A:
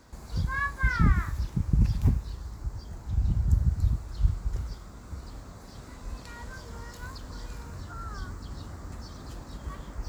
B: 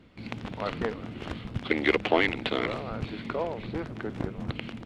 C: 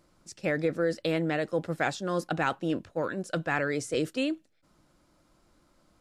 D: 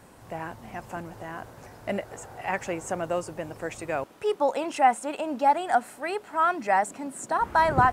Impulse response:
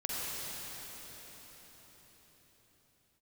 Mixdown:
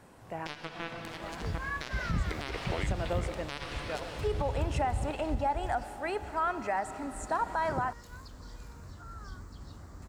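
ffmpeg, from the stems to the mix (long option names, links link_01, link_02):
-filter_complex "[0:a]adelay=1100,volume=-7dB[link_01];[1:a]adelay=600,volume=-13.5dB[link_02];[2:a]acrusher=bits=2:mix=0:aa=0.5,volume=-2dB,asplit=3[link_03][link_04][link_05];[link_04]volume=-6.5dB[link_06];[3:a]highshelf=frequency=7600:gain=-6.5,alimiter=limit=-16dB:level=0:latency=1:release=268,volume=-4.5dB,asplit=2[link_07][link_08];[link_08]volume=-16.5dB[link_09];[link_05]apad=whole_len=349631[link_10];[link_07][link_10]sidechaincompress=threshold=-51dB:ratio=8:attack=41:release=286[link_11];[4:a]atrim=start_sample=2205[link_12];[link_06][link_09]amix=inputs=2:normalize=0[link_13];[link_13][link_12]afir=irnorm=-1:irlink=0[link_14];[link_01][link_02][link_03][link_11][link_14]amix=inputs=5:normalize=0,alimiter=limit=-21dB:level=0:latency=1:release=104"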